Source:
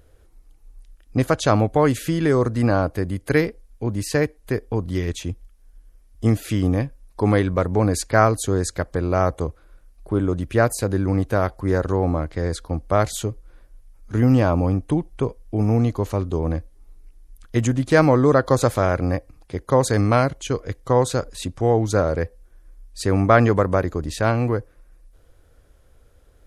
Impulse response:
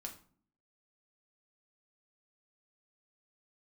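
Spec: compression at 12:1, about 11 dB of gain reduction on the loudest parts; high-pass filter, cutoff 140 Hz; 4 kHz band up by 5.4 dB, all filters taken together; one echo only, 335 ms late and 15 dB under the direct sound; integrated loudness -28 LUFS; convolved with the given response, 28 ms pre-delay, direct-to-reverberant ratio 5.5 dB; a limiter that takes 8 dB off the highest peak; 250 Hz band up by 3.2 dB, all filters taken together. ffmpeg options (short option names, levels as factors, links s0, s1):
-filter_complex "[0:a]highpass=140,equalizer=f=250:t=o:g=4.5,equalizer=f=4000:t=o:g=6.5,acompressor=threshold=0.1:ratio=12,alimiter=limit=0.168:level=0:latency=1,aecho=1:1:335:0.178,asplit=2[s0][s1];[1:a]atrim=start_sample=2205,adelay=28[s2];[s1][s2]afir=irnorm=-1:irlink=0,volume=0.794[s3];[s0][s3]amix=inputs=2:normalize=0,volume=0.891"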